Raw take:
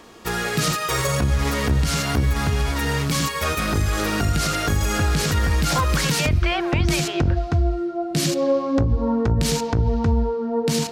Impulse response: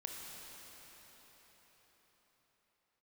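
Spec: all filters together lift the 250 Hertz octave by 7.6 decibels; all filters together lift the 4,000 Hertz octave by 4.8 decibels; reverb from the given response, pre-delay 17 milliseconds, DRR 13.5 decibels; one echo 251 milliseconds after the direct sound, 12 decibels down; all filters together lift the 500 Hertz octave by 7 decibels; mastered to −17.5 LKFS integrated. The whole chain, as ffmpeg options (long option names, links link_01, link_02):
-filter_complex "[0:a]equalizer=frequency=250:width_type=o:gain=8,equalizer=frequency=500:width_type=o:gain=6,equalizer=frequency=4000:width_type=o:gain=6,aecho=1:1:251:0.251,asplit=2[link_01][link_02];[1:a]atrim=start_sample=2205,adelay=17[link_03];[link_02][link_03]afir=irnorm=-1:irlink=0,volume=-12.5dB[link_04];[link_01][link_04]amix=inputs=2:normalize=0,volume=-1dB"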